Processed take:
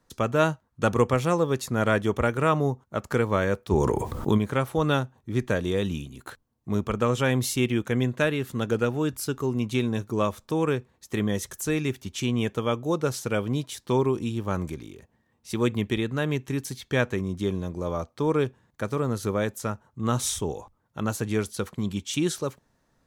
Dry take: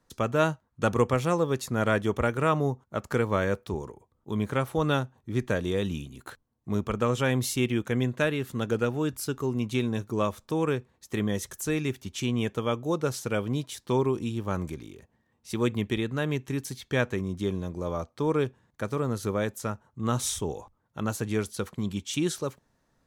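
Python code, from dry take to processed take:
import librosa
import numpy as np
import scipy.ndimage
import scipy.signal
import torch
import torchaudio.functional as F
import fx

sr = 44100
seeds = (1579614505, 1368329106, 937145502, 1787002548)

y = fx.env_flatten(x, sr, amount_pct=70, at=(3.7, 4.37), fade=0.02)
y = F.gain(torch.from_numpy(y), 2.0).numpy()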